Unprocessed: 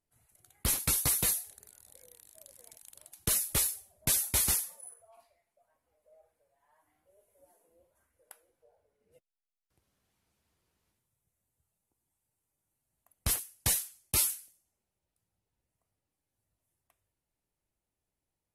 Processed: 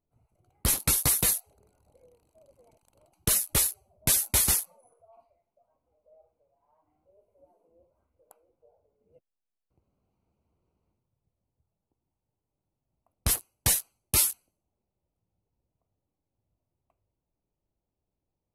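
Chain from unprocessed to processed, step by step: Wiener smoothing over 25 samples; gain +5 dB

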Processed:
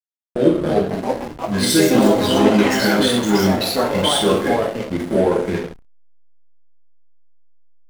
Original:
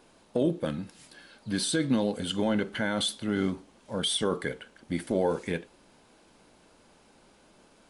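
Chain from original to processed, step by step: two-slope reverb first 0.66 s, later 2.5 s, DRR -6 dB; echoes that change speed 0.403 s, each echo +4 st, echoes 3; backlash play -24.5 dBFS; gain +4.5 dB

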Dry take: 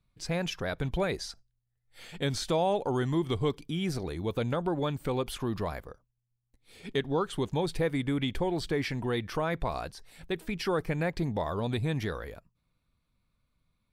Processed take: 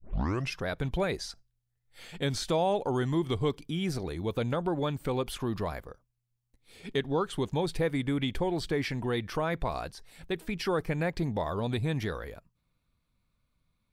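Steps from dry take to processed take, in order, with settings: tape start at the beginning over 0.56 s

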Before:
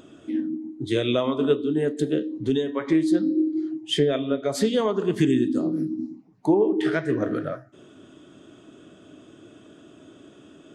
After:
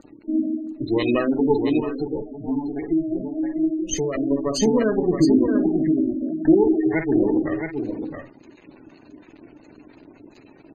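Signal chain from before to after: minimum comb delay 0.45 ms; sample gate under -47 dBFS; bell 290 Hz +5.5 dB 0.76 oct; doubler 50 ms -10 dB; spectral gate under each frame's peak -20 dB strong; bell 4600 Hz +9 dB 2.7 oct; echo 0.67 s -6 dB; 1.8–4.17 cascading flanger rising 1.1 Hz

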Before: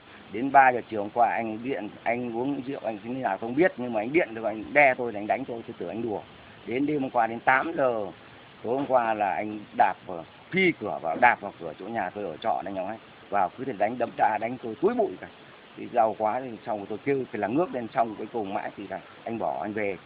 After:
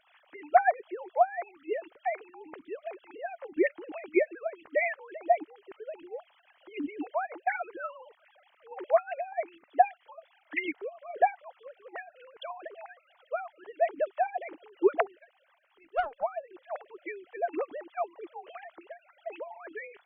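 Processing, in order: sine-wave speech; 15.19–16.23 tube stage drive 15 dB, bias 0.8; harmonic-percussive split harmonic -18 dB

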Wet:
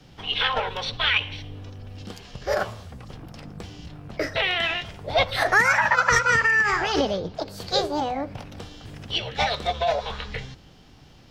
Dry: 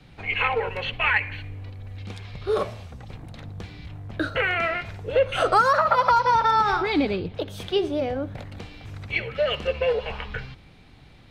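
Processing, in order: formant shift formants +5 st; notches 50/100 Hz

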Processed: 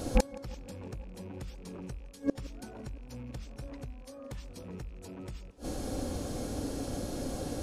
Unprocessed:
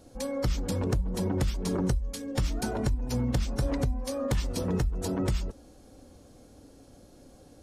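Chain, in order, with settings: rattling part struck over -34 dBFS, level -36 dBFS; flipped gate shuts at -28 dBFS, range -32 dB; tape echo 0.168 s, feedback 87%, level -19 dB, low-pass 4900 Hz; gain +17 dB

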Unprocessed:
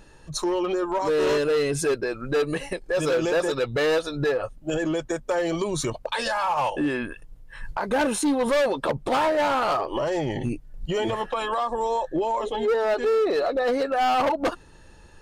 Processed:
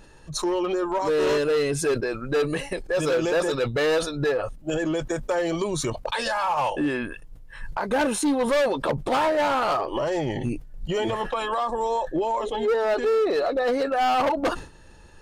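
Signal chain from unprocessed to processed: sustainer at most 120 dB/s

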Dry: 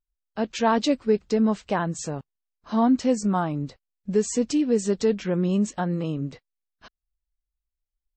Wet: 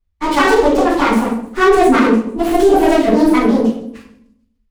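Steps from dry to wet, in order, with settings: repeated pitch sweeps -6 st, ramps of 0.674 s; high shelf 5700 Hz -5.5 dB; thin delay 0.258 s, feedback 50%, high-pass 3700 Hz, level -17.5 dB; added harmonics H 3 -21 dB, 6 -26 dB, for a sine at -10 dBFS; shoebox room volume 410 m³, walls mixed, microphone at 5.9 m; speed mistake 45 rpm record played at 78 rpm; maximiser +4 dB; running maximum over 5 samples; gain -1 dB

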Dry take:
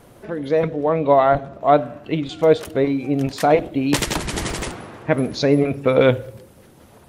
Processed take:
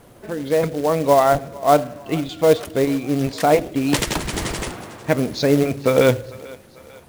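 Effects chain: short-mantissa float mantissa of 2-bit; thinning echo 0.445 s, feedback 56%, high-pass 420 Hz, level -20 dB

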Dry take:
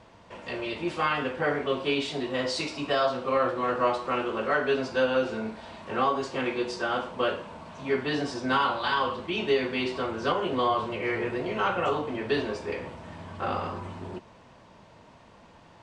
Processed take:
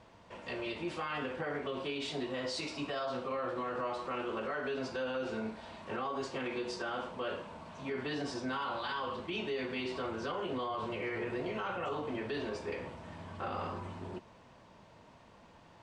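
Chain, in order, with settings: limiter -23.5 dBFS, peak gain reduction 9.5 dB; gain -5 dB

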